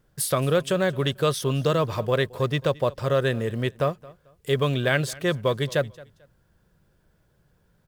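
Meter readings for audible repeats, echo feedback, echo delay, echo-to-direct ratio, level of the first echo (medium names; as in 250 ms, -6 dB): 2, 25%, 221 ms, -21.0 dB, -21.5 dB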